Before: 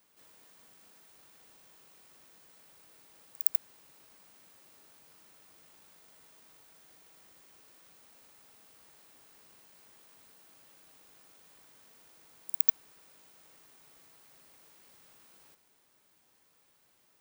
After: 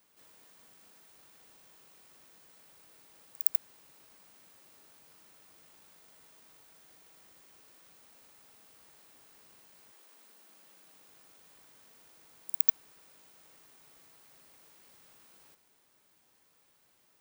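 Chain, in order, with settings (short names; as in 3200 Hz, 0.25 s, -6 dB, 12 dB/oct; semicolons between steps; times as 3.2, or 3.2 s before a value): 9.91–11.18 HPF 310 Hz -> 77 Hz 24 dB/oct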